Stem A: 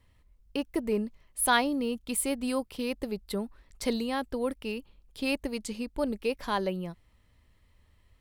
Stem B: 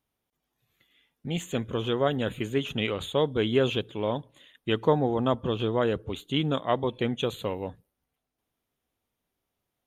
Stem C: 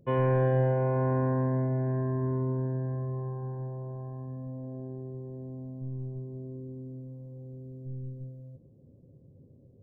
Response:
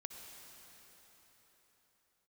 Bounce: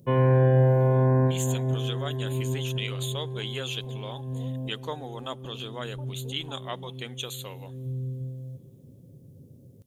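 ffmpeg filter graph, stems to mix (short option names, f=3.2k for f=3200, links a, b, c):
-filter_complex "[0:a]lowpass=f=830:t=q:w=4.9,acompressor=threshold=-27dB:ratio=6,volume=-19dB[a];[1:a]highpass=f=1.3k:p=1,volume=-4.5dB,asplit=3[b][c][d];[c]volume=-22dB[e];[2:a]highpass=93,volume=1dB,asplit=2[f][g];[g]volume=-9.5dB[h];[d]apad=whole_len=433065[i];[f][i]sidechaincompress=threshold=-51dB:ratio=8:attack=16:release=162[j];[3:a]atrim=start_sample=2205[k];[e][h]amix=inputs=2:normalize=0[l];[l][k]afir=irnorm=-1:irlink=0[m];[a][b][j][m]amix=inputs=4:normalize=0,bass=f=250:g=5,treble=f=4k:g=15"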